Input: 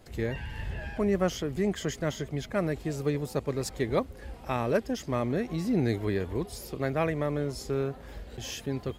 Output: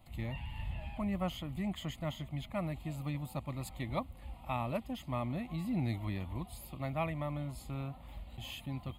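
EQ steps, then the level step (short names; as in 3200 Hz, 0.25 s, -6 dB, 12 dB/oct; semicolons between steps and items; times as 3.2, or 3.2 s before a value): fixed phaser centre 1600 Hz, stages 6; -3.5 dB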